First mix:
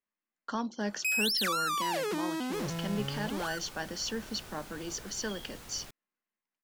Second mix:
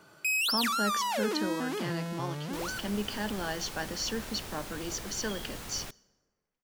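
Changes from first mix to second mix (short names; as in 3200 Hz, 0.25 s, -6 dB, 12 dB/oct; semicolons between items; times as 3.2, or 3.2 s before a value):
first sound: entry -0.80 s; second sound +6.0 dB; reverb: on, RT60 1.6 s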